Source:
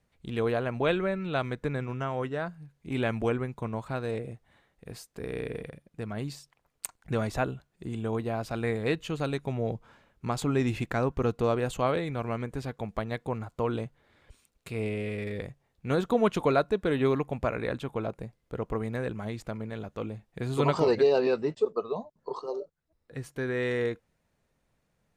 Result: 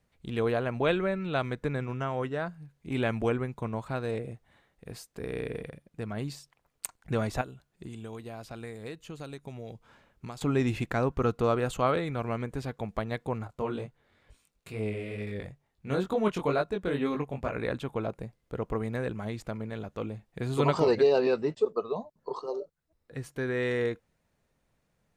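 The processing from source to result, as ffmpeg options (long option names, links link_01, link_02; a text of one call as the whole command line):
ffmpeg -i in.wav -filter_complex "[0:a]asettb=1/sr,asplit=3[link_01][link_02][link_03];[link_01]atrim=end=7.414[link_04];[link_02]atrim=start=7.41:end=10.41,asetpts=PTS-STARTPTS,afade=type=in:duration=0.004:curve=qsin,afade=type=out:start_time=2.996:duration=0.004:curve=qsin,acrossover=split=2100|4800[link_05][link_06][link_07];[link_05]acompressor=threshold=-40dB:ratio=4[link_08];[link_06]acompressor=threshold=-57dB:ratio=4[link_09];[link_07]acompressor=threshold=-56dB:ratio=4[link_10];[link_08][link_09][link_10]amix=inputs=3:normalize=0[link_11];[link_03]atrim=start=10.406[link_12];[link_04][link_11]acrossfade=duration=0.004:curve1=hsin:curve2=qsin[link_13];[link_13][link_12]acrossfade=duration=0.004:curve1=qsin:curve2=hsin,asettb=1/sr,asplit=3[link_14][link_15][link_16];[link_14]atrim=end=11.164[link_17];[link_15]atrim=start=11.16:end=12.17,asetpts=PTS-STARTPTS,afade=type=in:duration=0.004:curve=qsin,afade=type=out:start_time=1.006:duration=0.004:curve=qsin,equalizer=frequency=1300:width_type=o:width=0.27:gain=6[link_18];[link_16]atrim=start=12.166[link_19];[link_17][link_18]acrossfade=duration=0.004:curve1=hsin:curve2=qsin[link_20];[link_20][link_19]acrossfade=duration=0.004:curve1=qsin:curve2=hsin,asettb=1/sr,asplit=3[link_21][link_22][link_23];[link_21]atrim=end=13.474[link_24];[link_22]atrim=start=13.47:end=17.56,asetpts=PTS-STARTPTS,afade=type=in:duration=0.004:curve=qsin,afade=type=out:start_time=4.086:duration=0.004:curve=qsin,flanger=delay=18.5:depth=3.9:speed=2.2[link_25];[link_23]atrim=start=17.556[link_26];[link_24][link_25]acrossfade=duration=0.004:curve1=hsin:curve2=qsin[link_27];[link_27][link_26]acrossfade=duration=0.004:curve1=qsin:curve2=hsin" out.wav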